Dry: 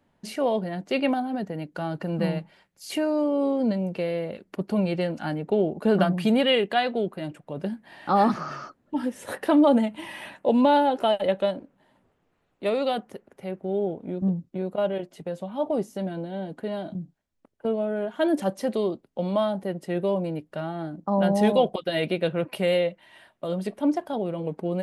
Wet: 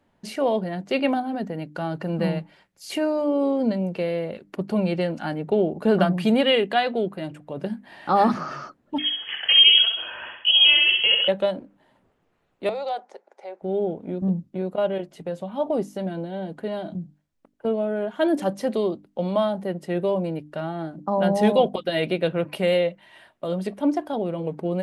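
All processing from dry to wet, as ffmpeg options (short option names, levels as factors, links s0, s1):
-filter_complex "[0:a]asettb=1/sr,asplit=3[s0][s1][s2];[s0]atrim=end=8.984[s3];[s1]atrim=start=8.98:end=11.28,asetpts=PTS-STARTPTS,afade=t=in:d=0.004:c=qsin,afade=t=out:st=2.296:d=0.004:c=qsin,aecho=1:1:65|130|195|260|325:0.596|0.25|0.105|0.0441|0.0185,atrim=end_sample=101430,lowpass=f=3000:t=q:w=0.5098,lowpass=f=3000:t=q:w=0.6013,lowpass=f=3000:t=q:w=0.9,lowpass=f=3000:t=q:w=2.563,afreqshift=-3500[s4];[s2]atrim=start=11.276[s5];[s3][s4]acrossfade=d=0.004:c1=hsin:c2=qsin[s6];[s6][s5]acrossfade=d=0.004:c1=qsin:c2=hsin,asettb=1/sr,asplit=3[s7][s8][s9];[s7]atrim=end=12.694[s10];[s8]atrim=start=12.69:end=13.62,asetpts=PTS-STARTPTS,afade=t=in:d=0.004:c=qsin,afade=t=out:st=0.926:d=0.004:c=qsin,acompressor=threshold=0.0355:ratio=2:attack=3.2:release=140:knee=1:detection=peak,aeval=exprs='0.0944*(abs(mod(val(0)/0.0944+3,4)-2)-1)':c=same,highpass=f=440:w=0.5412,highpass=f=440:w=1.3066,equalizer=f=440:t=q:w=4:g=-3,equalizer=f=830:t=q:w=4:g=7,equalizer=f=1200:t=q:w=4:g=-4,equalizer=f=1800:t=q:w=4:g=-4,equalizer=f=2900:t=q:w=4:g=-9,lowpass=f=7300:w=0.5412,lowpass=f=7300:w=1.3066[s11];[s9]atrim=start=13.616[s12];[s10][s11]acrossfade=d=0.004:c1=hsin:c2=qsin[s13];[s13][s12]acrossfade=d=0.004:c1=qsin:c2=hsin,highshelf=f=10000:g=-5,bandreject=f=50:t=h:w=6,bandreject=f=100:t=h:w=6,bandreject=f=150:t=h:w=6,bandreject=f=200:t=h:w=6,bandreject=f=250:t=h:w=6,bandreject=f=300:t=h:w=6,volume=1.26"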